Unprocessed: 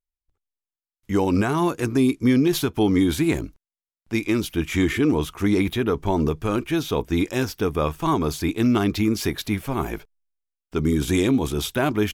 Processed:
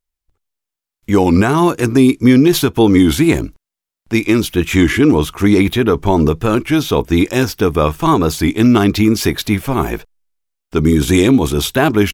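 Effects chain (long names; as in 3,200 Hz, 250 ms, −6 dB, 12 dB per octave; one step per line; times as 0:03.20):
wow of a warped record 33 1/3 rpm, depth 100 cents
level +9 dB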